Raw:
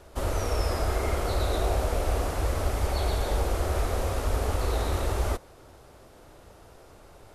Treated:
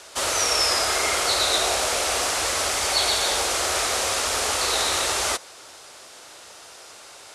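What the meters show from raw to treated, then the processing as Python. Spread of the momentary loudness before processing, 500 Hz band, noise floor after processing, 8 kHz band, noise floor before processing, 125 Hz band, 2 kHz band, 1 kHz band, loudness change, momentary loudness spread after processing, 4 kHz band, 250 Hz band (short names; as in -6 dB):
2 LU, +2.0 dB, -45 dBFS, +18.5 dB, -52 dBFS, -14.5 dB, +12.5 dB, +7.0 dB, +8.0 dB, 3 LU, +18.0 dB, -3.0 dB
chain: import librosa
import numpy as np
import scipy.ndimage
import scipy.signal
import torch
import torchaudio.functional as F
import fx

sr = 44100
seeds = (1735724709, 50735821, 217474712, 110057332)

y = fx.weighting(x, sr, curve='ITU-R 468')
y = F.gain(torch.from_numpy(y), 7.5).numpy()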